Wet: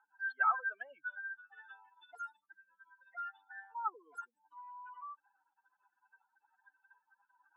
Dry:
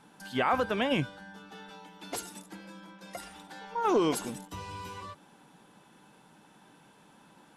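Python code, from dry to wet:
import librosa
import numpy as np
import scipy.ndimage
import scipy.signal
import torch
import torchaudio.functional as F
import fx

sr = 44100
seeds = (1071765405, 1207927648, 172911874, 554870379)

y = fx.spec_expand(x, sr, power=3.6)
y = fx.ladder_highpass(y, sr, hz=1400.0, resonance_pct=65)
y = fx.env_lowpass(y, sr, base_hz=1800.0, full_db=-31.0)
y = F.gain(torch.from_numpy(y), 10.0).numpy()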